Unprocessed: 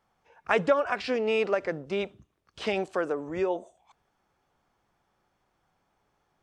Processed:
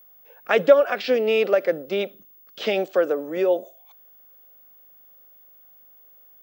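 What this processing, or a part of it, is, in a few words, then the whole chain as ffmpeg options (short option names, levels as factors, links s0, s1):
old television with a line whistle: -af "highpass=f=190:w=0.5412,highpass=f=190:w=1.3066,equalizer=f=540:t=q:w=4:g=8,equalizer=f=970:t=q:w=4:g=-9,equalizer=f=3400:t=q:w=4:g=5,lowpass=f=6900:w=0.5412,lowpass=f=6900:w=1.3066,aeval=exprs='val(0)+0.00224*sin(2*PI*15625*n/s)':c=same,volume=1.58"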